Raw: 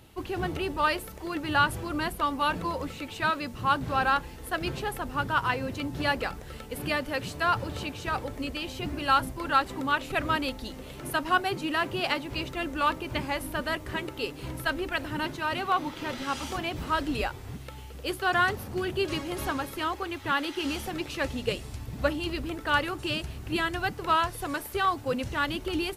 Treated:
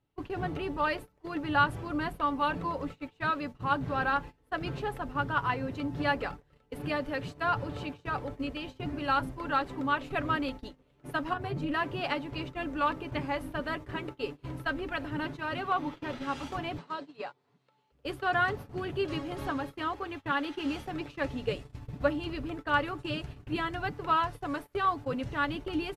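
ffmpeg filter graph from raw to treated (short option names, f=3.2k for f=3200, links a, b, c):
-filter_complex "[0:a]asettb=1/sr,asplit=3[a][b][c];[a]atrim=end=11.334[d];[b]atrim=start=11.33:end=11.74,asetpts=PTS-STARTPTS,afade=t=in:d=0.004:c=qsin,afade=t=out:st=0.406:d=0.004:c=qsin,tremolo=f=280:d=0.621,equalizer=f=110:t=o:w=2.2:g=13.5,acompressor=threshold=-26dB:ratio=10:attack=3.2:release=140:knee=1:detection=peak[e];[c]atrim=start=11.736[f];[d][e]acrossfade=d=0.004:c1=hsin:c2=qsin[g];[g][f]acrossfade=d=0.004:c1=qsin:c2=hsin,asettb=1/sr,asplit=3[h][i][j];[h]atrim=end=16.784[k];[i]atrim=start=16.78:end=17.92,asetpts=PTS-STARTPTS,afade=t=in:d=0.004:c=qsin,afade=t=out:st=1.136:d=0.004:c=qsin,acrossover=split=740|2000[l][m][n];[l]acompressor=threshold=-33dB:ratio=4[o];[m]acompressor=threshold=-42dB:ratio=4[p];[n]acompressor=threshold=-43dB:ratio=4[q];[o][p][q]amix=inputs=3:normalize=0,highpass=f=170:w=0.5412,highpass=f=170:w=1.3066,equalizer=f=290:t=q:w=4:g=-7,equalizer=f=1k:t=q:w=4:g=5,equalizer=f=4.2k:t=q:w=4:g=7,lowpass=f=9k:w=0.5412,lowpass=f=9k:w=1.3066[r];[j]atrim=start=17.916[s];[k][r]acrossfade=d=0.004:c1=hsin:c2=qsin[t];[t][s]acrossfade=d=0.004:c1=qsin:c2=hsin,lowpass=f=2k:p=1,agate=range=-22dB:threshold=-37dB:ratio=16:detection=peak,aecho=1:1:7:0.39,volume=-2.5dB"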